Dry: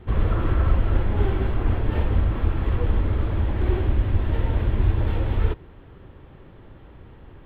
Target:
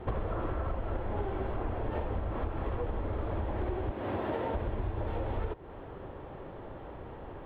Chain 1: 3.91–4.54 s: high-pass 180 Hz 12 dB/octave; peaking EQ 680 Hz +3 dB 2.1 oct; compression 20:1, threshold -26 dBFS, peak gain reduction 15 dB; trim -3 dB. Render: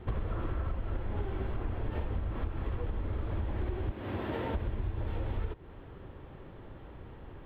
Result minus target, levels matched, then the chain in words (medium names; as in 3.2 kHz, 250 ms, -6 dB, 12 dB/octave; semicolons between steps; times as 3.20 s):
500 Hz band -5.0 dB
3.91–4.54 s: high-pass 180 Hz 12 dB/octave; peaking EQ 680 Hz +13 dB 2.1 oct; compression 20:1, threshold -26 dBFS, peak gain reduction 15.5 dB; trim -3 dB